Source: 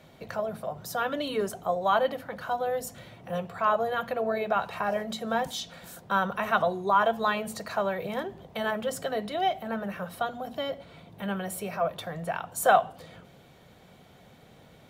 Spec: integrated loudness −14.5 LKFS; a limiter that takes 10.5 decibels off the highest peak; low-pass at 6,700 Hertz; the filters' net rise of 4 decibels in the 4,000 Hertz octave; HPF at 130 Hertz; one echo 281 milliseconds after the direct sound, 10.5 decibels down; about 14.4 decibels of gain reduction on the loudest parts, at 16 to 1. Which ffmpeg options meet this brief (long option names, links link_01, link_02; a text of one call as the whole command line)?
ffmpeg -i in.wav -af "highpass=130,lowpass=6700,equalizer=frequency=4000:width_type=o:gain=5.5,acompressor=threshold=-29dB:ratio=16,alimiter=level_in=4.5dB:limit=-24dB:level=0:latency=1,volume=-4.5dB,aecho=1:1:281:0.299,volume=23.5dB" out.wav